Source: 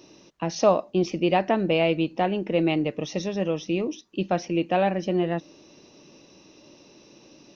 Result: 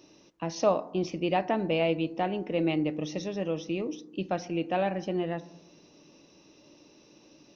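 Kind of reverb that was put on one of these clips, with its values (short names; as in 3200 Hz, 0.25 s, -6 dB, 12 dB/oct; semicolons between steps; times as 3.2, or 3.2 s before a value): FDN reverb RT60 0.87 s, low-frequency decay 1.4×, high-frequency decay 0.25×, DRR 14 dB; gain -5.5 dB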